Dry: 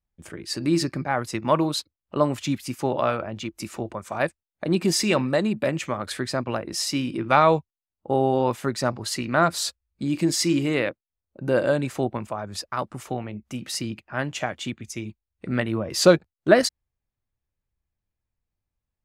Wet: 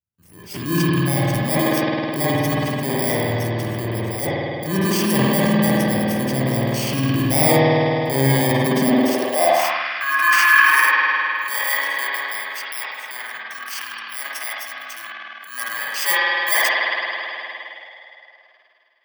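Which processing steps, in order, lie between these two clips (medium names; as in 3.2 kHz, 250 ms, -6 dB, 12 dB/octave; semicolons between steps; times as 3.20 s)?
bit-reversed sample order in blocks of 32 samples; 9.59–10.77 s: high-order bell 1.5 kHz +11.5 dB; spring tank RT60 3.5 s, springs 52 ms, chirp 55 ms, DRR -6 dB; spectral noise reduction 8 dB; transient shaper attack -7 dB, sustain +9 dB; high-pass sweep 100 Hz -> 1.4 kHz, 8.52–9.90 s; trim -1 dB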